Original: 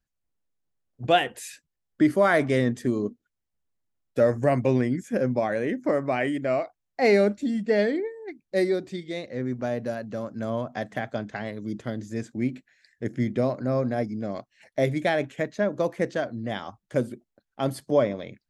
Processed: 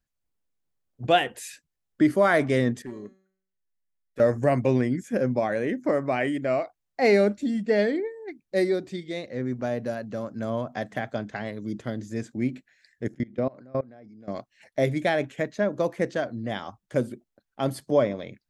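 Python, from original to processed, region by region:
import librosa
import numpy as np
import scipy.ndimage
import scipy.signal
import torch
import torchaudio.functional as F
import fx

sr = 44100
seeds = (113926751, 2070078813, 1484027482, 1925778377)

y = fx.chain(x, sr, fx.clip_hard(threshold_db=-18.5),
    fx.peak_eq(hz=1900.0, db=9.0, octaves=0.66),
    fx.comb_fb(f0_hz=190.0, decay_s=0.61, harmonics='all', damping=0.0, mix_pct=80), at=(2.82, 4.2))
y = fx.chain(y, sr, fx.env_lowpass_down(base_hz=2600.0, full_db=-19.5),
    fx.peak_eq(hz=69.0, db=-7.5, octaves=1.3),
    fx.level_steps(step_db=24), at=(13.08, 14.28))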